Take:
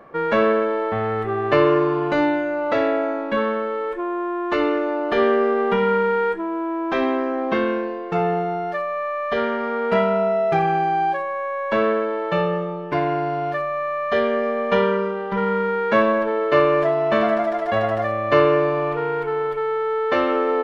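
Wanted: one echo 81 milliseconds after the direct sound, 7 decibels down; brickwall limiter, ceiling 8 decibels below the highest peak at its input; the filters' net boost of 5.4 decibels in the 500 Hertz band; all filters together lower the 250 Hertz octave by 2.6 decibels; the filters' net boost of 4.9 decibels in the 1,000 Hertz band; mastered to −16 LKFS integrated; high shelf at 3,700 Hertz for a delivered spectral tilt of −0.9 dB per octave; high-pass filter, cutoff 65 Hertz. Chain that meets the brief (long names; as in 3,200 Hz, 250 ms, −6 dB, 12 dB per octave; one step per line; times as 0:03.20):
high-pass filter 65 Hz
parametric band 250 Hz −8.5 dB
parametric band 500 Hz +7.5 dB
parametric band 1,000 Hz +5 dB
high-shelf EQ 3,700 Hz −5.5 dB
brickwall limiter −8 dBFS
single-tap delay 81 ms −7 dB
level +2 dB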